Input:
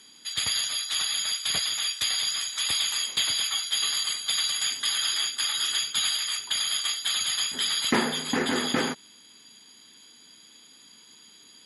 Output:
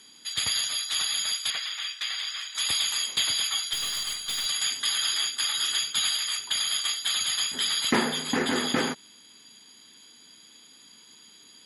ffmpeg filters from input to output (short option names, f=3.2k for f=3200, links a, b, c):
-filter_complex "[0:a]asettb=1/sr,asplit=3[a][b][c];[a]atrim=end=1.504[d];[b]atrim=start=1.5:end=2.55,asetpts=PTS-STARTPTS,afade=t=in:d=0.004:c=qsin,afade=t=out:st=1.046:d=0.004:c=qsin,bandpass=f=1.9k:t=q:w=0.86:csg=0[e];[c]atrim=start=2.546[f];[d][e]acrossfade=d=0.004:c1=hsin:c2=qsin[g];[g][f]acrossfade=d=0.004:c1=qsin:c2=hsin,asettb=1/sr,asplit=3[h][i][j];[h]atrim=end=3.734[k];[i]atrim=start=3.73:end=4.46,asetpts=PTS-STARTPTS,afade=t=in:d=0.004:c=qsin,afade=t=out:st=0.726:d=0.004:c=qsin,aeval=exprs='(tanh(17.8*val(0)+0.25)-tanh(0.25))/17.8':c=same[l];[j]atrim=start=4.456[m];[k][l]acrossfade=d=0.004:c1=hsin:c2=qsin[n];[n][m]acrossfade=d=0.004:c1=qsin:c2=hsin"